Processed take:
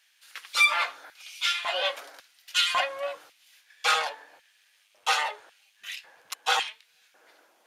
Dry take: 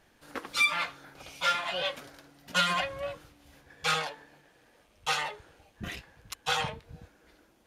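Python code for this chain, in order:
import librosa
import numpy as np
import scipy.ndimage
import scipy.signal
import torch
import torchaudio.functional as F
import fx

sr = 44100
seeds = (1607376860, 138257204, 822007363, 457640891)

y = fx.steep_highpass(x, sr, hz=270.0, slope=48, at=(1.01, 2.7))
y = fx.filter_lfo_highpass(y, sr, shape='square', hz=0.91, low_hz=650.0, high_hz=2600.0, q=1.1)
y = F.gain(torch.from_numpy(y), 4.0).numpy()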